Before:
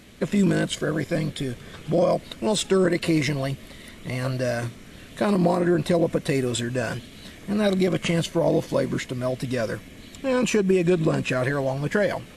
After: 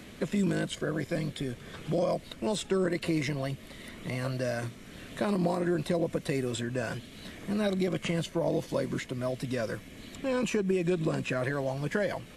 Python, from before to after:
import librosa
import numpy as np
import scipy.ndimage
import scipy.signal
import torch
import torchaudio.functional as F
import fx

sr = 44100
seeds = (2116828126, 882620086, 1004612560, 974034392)

y = fx.band_squash(x, sr, depth_pct=40)
y = y * librosa.db_to_amplitude(-7.5)